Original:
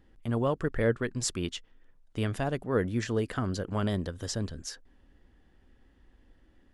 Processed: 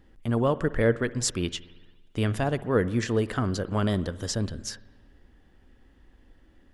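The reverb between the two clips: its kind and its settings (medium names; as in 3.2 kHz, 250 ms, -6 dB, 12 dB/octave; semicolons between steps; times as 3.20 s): spring tank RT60 1.3 s, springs 56 ms, chirp 70 ms, DRR 16.5 dB; trim +4 dB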